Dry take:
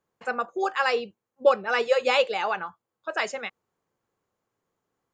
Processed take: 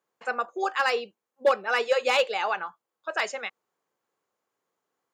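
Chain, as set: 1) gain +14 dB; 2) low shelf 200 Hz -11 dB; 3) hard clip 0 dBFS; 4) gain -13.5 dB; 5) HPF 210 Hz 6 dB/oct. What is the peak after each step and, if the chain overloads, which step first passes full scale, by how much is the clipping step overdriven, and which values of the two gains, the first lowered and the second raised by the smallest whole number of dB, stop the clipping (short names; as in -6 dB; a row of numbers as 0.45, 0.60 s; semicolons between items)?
+6.0, +5.0, 0.0, -13.5, -11.5 dBFS; step 1, 5.0 dB; step 1 +9 dB, step 4 -8.5 dB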